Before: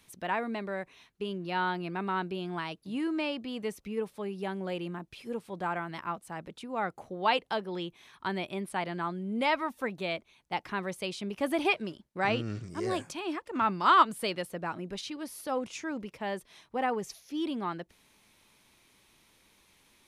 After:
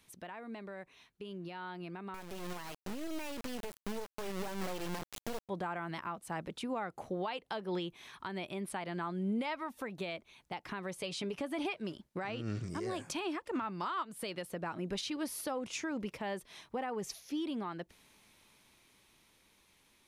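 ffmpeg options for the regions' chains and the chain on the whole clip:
ffmpeg -i in.wav -filter_complex "[0:a]asettb=1/sr,asplit=3[link_01][link_02][link_03];[link_01]atrim=end=2.144[link_04];[link_02]atrim=start=2.14:end=5.49,asetpts=PTS-STARTPTS,afade=type=in:duration=0.004:curve=qsin,afade=type=out:start_time=3.346:duration=0.004:curve=qsin,acontrast=62,acrusher=bits=3:dc=4:mix=0:aa=0.000001[link_05];[link_03]atrim=start=5.486[link_06];[link_04][link_05]acrossfade=duration=0.004:curve1=hsin:curve2=qsin[link_07];[link_07][link_06]acrossfade=duration=0.004:curve1=qsin:curve2=hsin,asettb=1/sr,asplit=3[link_08][link_09][link_10];[link_08]atrim=end=10.964[link_11];[link_09]atrim=start=10.96:end=11.66,asetpts=PTS-STARTPTS,afade=type=in:duration=0.004:curve=qsin,afade=type=out:start_time=0.696:duration=0.004:curve=qsin,lowpass=11000,aecho=1:1:7:0.53,atrim=end_sample=30870[link_12];[link_10]atrim=start=11.656[link_13];[link_11][link_12]acrossfade=duration=0.004:curve1=hsin:curve2=qsin[link_14];[link_14][link_13]acrossfade=duration=0.004:curve1=qsin:curve2=hsin,acompressor=threshold=-33dB:ratio=6,alimiter=level_in=7.5dB:limit=-24dB:level=0:latency=1:release=260,volume=-7.5dB,dynaudnorm=framelen=570:gausssize=11:maxgain=7.5dB,volume=-4dB" out.wav

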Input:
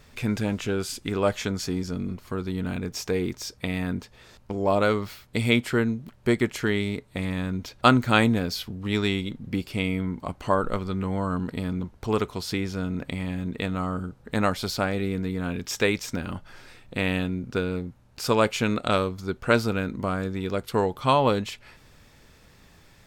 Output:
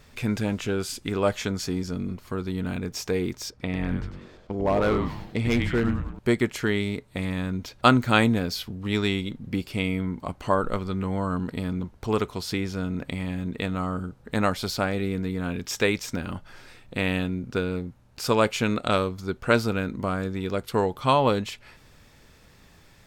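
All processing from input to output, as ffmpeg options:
ffmpeg -i in.wav -filter_complex "[0:a]asettb=1/sr,asplit=3[link_01][link_02][link_03];[link_01]atrim=end=3.504[link_04];[link_02]atrim=start=3.5:end=6.19,asetpts=PTS-STARTPTS,afade=type=in:duration=0.004:curve=qsin,afade=type=out:start_time=2.686:duration=0.004:curve=qsin,aemphasis=mode=reproduction:type=75kf,asplit=7[link_05][link_06][link_07][link_08][link_09][link_10][link_11];[link_06]adelay=97,afreqshift=-140,volume=-6dB[link_12];[link_07]adelay=194,afreqshift=-280,volume=-12.4dB[link_13];[link_08]adelay=291,afreqshift=-420,volume=-18.8dB[link_14];[link_09]adelay=388,afreqshift=-560,volume=-25.1dB[link_15];[link_10]adelay=485,afreqshift=-700,volume=-31.5dB[link_16];[link_11]adelay=582,afreqshift=-840,volume=-37.9dB[link_17];[link_05][link_12][link_13][link_14][link_15][link_16][link_17]amix=inputs=7:normalize=0,atrim=end_sample=118629,volume=17dB,asoftclip=hard,volume=-17dB[link_18];[link_03]atrim=start=6.186[link_19];[link_04][link_18]acrossfade=duration=0.004:curve1=hsin:curve2=qsin[link_20];[link_20][link_19]acrossfade=duration=0.004:curve1=qsin:curve2=hsin" out.wav

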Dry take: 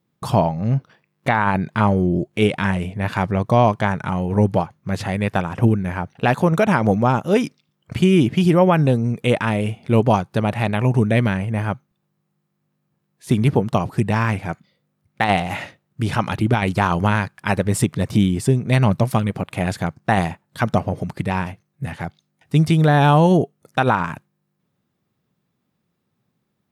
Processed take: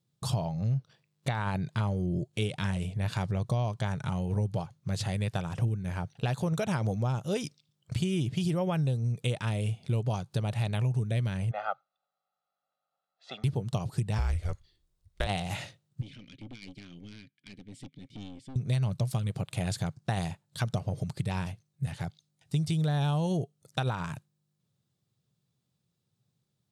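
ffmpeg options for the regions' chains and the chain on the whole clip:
ffmpeg -i in.wav -filter_complex "[0:a]asettb=1/sr,asplit=3[link_01][link_02][link_03];[link_01]atrim=end=11.514[link_04];[link_02]atrim=start=11.51:end=13.44,asetpts=PTS-STARTPTS,afade=type=in:duration=0.004:curve=qsin,afade=type=out:start_time=1.926:duration=0.004:curve=qsin,highpass=frequency=390:width=0.5412,highpass=frequency=390:width=1.3066,equalizer=frequency=420:width_type=q:width=4:gain=-8,equalizer=frequency=760:width_type=q:width=4:gain=9,equalizer=frequency=1300:width_type=q:width=4:gain=10,equalizer=frequency=2200:width_type=q:width=4:gain=-6,equalizer=frequency=3100:width_type=q:width=4:gain=-4,lowpass=frequency=3600:width=0.5412,lowpass=frequency=3600:width=1.3066,aecho=1:1:1.5:0.77,atrim=end_sample=85113[link_05];[link_03]atrim=start=13.436[link_06];[link_04][link_05]acrossfade=duration=0.004:curve1=hsin:curve2=qsin[link_07];[link_07][link_06]acrossfade=duration=0.004:curve1=qsin:curve2=hsin,asettb=1/sr,asplit=3[link_08][link_09][link_10];[link_08]atrim=end=14.184[link_11];[link_09]atrim=start=14.18:end=15.27,asetpts=PTS-STARTPTS,afade=type=in:duration=0.004:curve=qsin,afade=type=out:start_time=1.086:duration=0.004:curve=qsin,lowshelf=frequency=200:gain=11,afreqshift=-180[link_12];[link_10]atrim=start=15.266[link_13];[link_11][link_12]acrossfade=duration=0.004:curve1=hsin:curve2=qsin[link_14];[link_14][link_13]acrossfade=duration=0.004:curve1=qsin:curve2=hsin,asettb=1/sr,asplit=3[link_15][link_16][link_17];[link_15]atrim=end=16.014[link_18];[link_16]atrim=start=16.01:end=18.56,asetpts=PTS-STARTPTS,afade=type=in:duration=0.004:curve=qsin,afade=type=out:start_time=2.546:duration=0.004:curve=qsin,asplit=3[link_19][link_20][link_21];[link_19]bandpass=frequency=270:width_type=q:width=8,volume=0dB[link_22];[link_20]bandpass=frequency=2290:width_type=q:width=8,volume=-6dB[link_23];[link_21]bandpass=frequency=3010:width_type=q:width=8,volume=-9dB[link_24];[link_22][link_23][link_24]amix=inputs=3:normalize=0,aeval=exprs='(tanh(28.2*val(0)+0.45)-tanh(0.45))/28.2':channel_layout=same[link_25];[link_17]atrim=start=18.556[link_26];[link_18][link_25]acrossfade=duration=0.004:curve1=hsin:curve2=qsin[link_27];[link_27][link_26]acrossfade=duration=0.004:curve1=qsin:curve2=hsin,equalizer=frequency=125:width_type=o:width=1:gain=9,equalizer=frequency=250:width_type=o:width=1:gain=-7,equalizer=frequency=1000:width_type=o:width=1:gain=-4,equalizer=frequency=2000:width_type=o:width=1:gain=-5,equalizer=frequency=4000:width_type=o:width=1:gain=7,equalizer=frequency=8000:width_type=o:width=1:gain=8,acompressor=threshold=-18dB:ratio=4,volume=-8.5dB" out.wav

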